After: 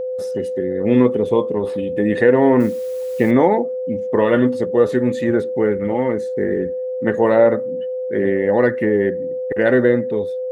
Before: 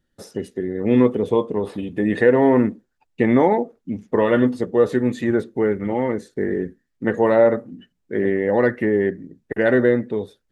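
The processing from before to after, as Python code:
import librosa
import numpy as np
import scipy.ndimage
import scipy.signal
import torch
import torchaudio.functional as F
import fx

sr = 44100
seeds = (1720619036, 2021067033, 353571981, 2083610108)

y = fx.quant_dither(x, sr, seeds[0], bits=8, dither='triangular', at=(2.6, 3.31))
y = y + 10.0 ** (-23.0 / 20.0) * np.sin(2.0 * np.pi * 510.0 * np.arange(len(y)) / sr)
y = F.gain(torch.from_numpy(y), 1.5).numpy()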